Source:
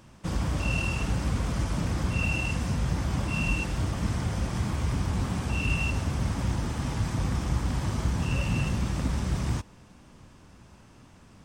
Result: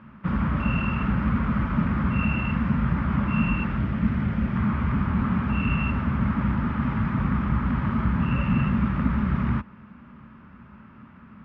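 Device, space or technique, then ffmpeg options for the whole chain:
bass cabinet: -filter_complex "[0:a]highpass=64,equalizer=f=100:t=q:w=4:g=-7,equalizer=f=220:t=q:w=4:g=9,equalizer=f=320:t=q:w=4:g=-7,equalizer=f=480:t=q:w=4:g=-9,equalizer=f=730:t=q:w=4:g=-9,equalizer=f=1.3k:t=q:w=4:g=7,lowpass=f=2.3k:w=0.5412,lowpass=f=2.3k:w=1.3066,asettb=1/sr,asplit=3[a][b][c];[a]atrim=end=3.774[d];[b]atrim=start=3.77:end=4.56,asetpts=PTS-STARTPTS,afade=t=in:d=0.004:c=qsin,afade=t=out:st=0.786:d=0.004:c=qsin,equalizer=f=1.1k:w=1.5:g=-6.5[e];[c]atrim=start=4.556[f];[d][e]acrossfade=d=0.004:c1=hsin:c2=qsin[g];[g][f]acrossfade=d=0.004:c1=qsin:c2=hsin,volume=5.5dB"

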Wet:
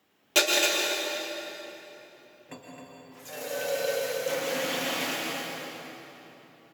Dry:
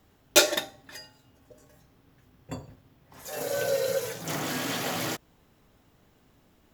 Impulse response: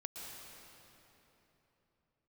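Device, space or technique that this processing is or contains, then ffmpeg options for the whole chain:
stadium PA: -filter_complex "[0:a]highpass=240,equalizer=f=2.6k:t=o:w=1.1:g=6,aecho=1:1:163.3|265.3:0.355|0.447[a];[1:a]atrim=start_sample=2205[b];[a][b]afir=irnorm=-1:irlink=0"

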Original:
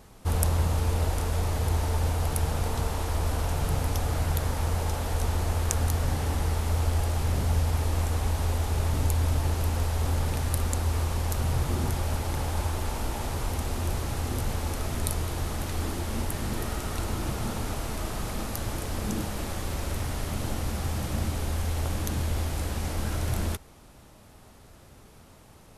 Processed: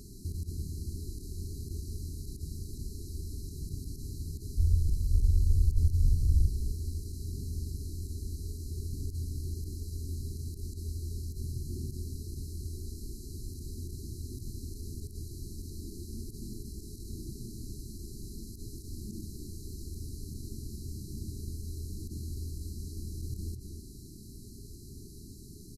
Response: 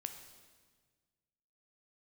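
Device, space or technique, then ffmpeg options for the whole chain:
de-esser from a sidechain: -filter_complex "[0:a]asplit=3[a][b][c];[a]afade=t=out:st=4.56:d=0.02[d];[b]asubboost=boost=8.5:cutoff=96,afade=t=in:st=4.56:d=0.02,afade=t=out:st=6.46:d=0.02[e];[c]afade=t=in:st=6.46:d=0.02[f];[d][e][f]amix=inputs=3:normalize=0,asplit=2[g][h];[h]highpass=4.7k,apad=whole_len=1136469[i];[g][i]sidechaincompress=threshold=-56dB:ratio=10:attack=0.59:release=36,afftfilt=real='re*(1-between(b*sr/4096,430,3900))':imag='im*(1-between(b*sr/4096,430,3900))':win_size=4096:overlap=0.75,asplit=2[j][k];[k]adelay=258,lowpass=f=3.5k:p=1,volume=-7dB,asplit=2[l][m];[m]adelay=258,lowpass=f=3.5k:p=1,volume=0.19,asplit=2[n][o];[o]adelay=258,lowpass=f=3.5k:p=1,volume=0.19[p];[j][l][n][p]amix=inputs=4:normalize=0,volume=5.5dB"

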